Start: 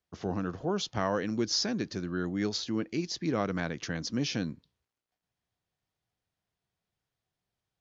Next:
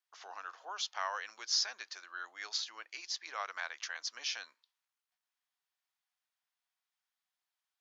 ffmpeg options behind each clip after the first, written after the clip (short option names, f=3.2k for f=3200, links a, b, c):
-af "highpass=f=890:w=0.5412,highpass=f=890:w=1.3066,volume=-1.5dB"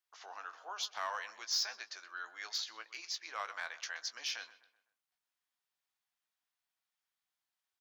-filter_complex "[0:a]asplit=2[a][b];[b]aeval=exprs='0.0316*(abs(mod(val(0)/0.0316+3,4)-2)-1)':c=same,volume=-8.5dB[c];[a][c]amix=inputs=2:normalize=0,asplit=2[d][e];[e]adelay=18,volume=-10.5dB[f];[d][f]amix=inputs=2:normalize=0,asplit=2[g][h];[h]adelay=127,lowpass=f=2.8k:p=1,volume=-15.5dB,asplit=2[i][j];[j]adelay=127,lowpass=f=2.8k:p=1,volume=0.45,asplit=2[k][l];[l]adelay=127,lowpass=f=2.8k:p=1,volume=0.45,asplit=2[m][n];[n]adelay=127,lowpass=f=2.8k:p=1,volume=0.45[o];[g][i][k][m][o]amix=inputs=5:normalize=0,volume=-4dB"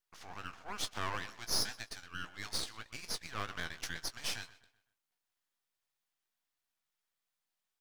-af "aeval=exprs='max(val(0),0)':c=same,volume=5dB"